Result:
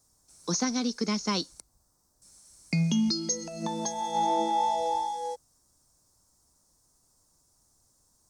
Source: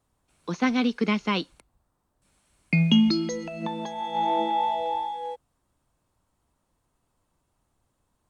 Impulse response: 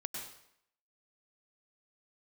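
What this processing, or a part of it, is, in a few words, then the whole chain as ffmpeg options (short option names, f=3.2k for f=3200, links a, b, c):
over-bright horn tweeter: -af "highshelf=f=4k:t=q:w=3:g=12,alimiter=limit=-17.5dB:level=0:latency=1:release=471"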